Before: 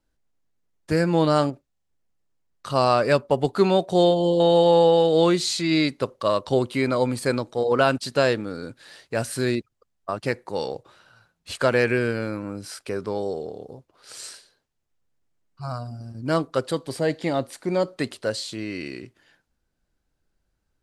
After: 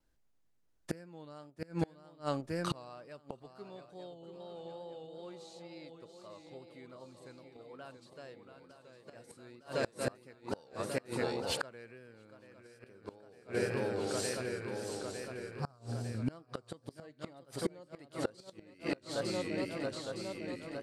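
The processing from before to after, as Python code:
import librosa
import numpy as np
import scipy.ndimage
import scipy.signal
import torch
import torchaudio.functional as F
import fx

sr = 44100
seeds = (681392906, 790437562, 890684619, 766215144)

y = fx.echo_swing(x, sr, ms=907, ratio=3, feedback_pct=55, wet_db=-8.5)
y = fx.gate_flip(y, sr, shuts_db=-18.0, range_db=-29)
y = fx.wow_flutter(y, sr, seeds[0], rate_hz=2.1, depth_cents=59.0)
y = y * librosa.db_to_amplitude(-2.0)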